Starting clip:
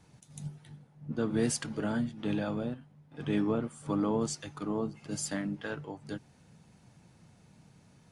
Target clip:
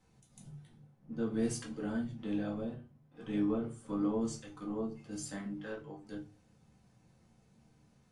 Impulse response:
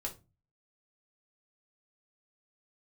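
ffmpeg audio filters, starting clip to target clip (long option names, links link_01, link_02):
-filter_complex "[1:a]atrim=start_sample=2205,asetrate=35721,aresample=44100[link_01];[0:a][link_01]afir=irnorm=-1:irlink=0,volume=-8.5dB"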